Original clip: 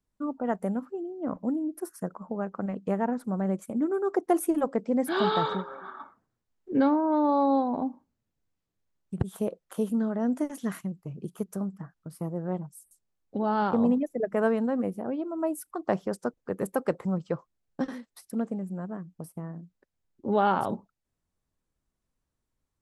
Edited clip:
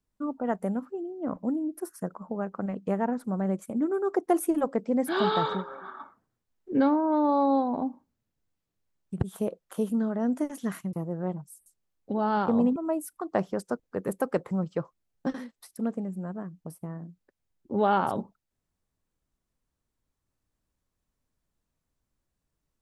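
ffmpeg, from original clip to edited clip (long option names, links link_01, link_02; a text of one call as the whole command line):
ffmpeg -i in.wav -filter_complex "[0:a]asplit=3[link_01][link_02][link_03];[link_01]atrim=end=10.932[link_04];[link_02]atrim=start=12.178:end=14.012[link_05];[link_03]atrim=start=15.298[link_06];[link_04][link_05]acrossfade=duration=0.004:curve1=hsin:curve2=hsin[link_07];[link_07][link_06]acrossfade=duration=0.004:curve1=hsin:curve2=hsin" out.wav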